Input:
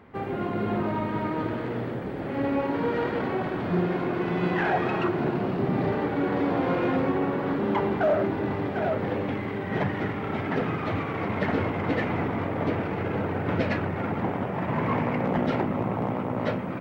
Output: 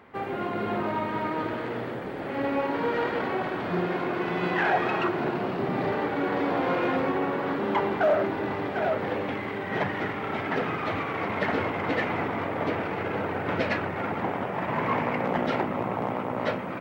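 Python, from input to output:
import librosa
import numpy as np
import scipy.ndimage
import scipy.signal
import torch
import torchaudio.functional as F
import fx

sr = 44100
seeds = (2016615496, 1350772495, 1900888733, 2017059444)

y = fx.low_shelf(x, sr, hz=310.0, db=-11.0)
y = y * 10.0 ** (3.0 / 20.0)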